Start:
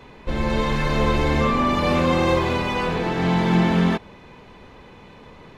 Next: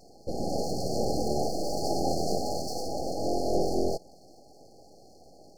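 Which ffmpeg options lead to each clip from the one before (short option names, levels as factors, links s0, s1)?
-af "aeval=exprs='abs(val(0))':c=same,afftfilt=real='re*(1-between(b*sr/4096,830,4200))':imag='im*(1-between(b*sr/4096,830,4200))':win_size=4096:overlap=0.75,lowshelf=f=260:g=-9.5"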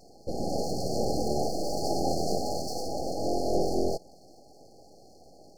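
-af anull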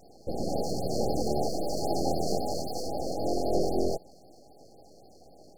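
-af "afftfilt=real='re*(1-between(b*sr/1024,960*pow(7500/960,0.5+0.5*sin(2*PI*3.8*pts/sr))/1.41,960*pow(7500/960,0.5+0.5*sin(2*PI*3.8*pts/sr))*1.41))':imag='im*(1-between(b*sr/1024,960*pow(7500/960,0.5+0.5*sin(2*PI*3.8*pts/sr))/1.41,960*pow(7500/960,0.5+0.5*sin(2*PI*3.8*pts/sr))*1.41))':win_size=1024:overlap=0.75"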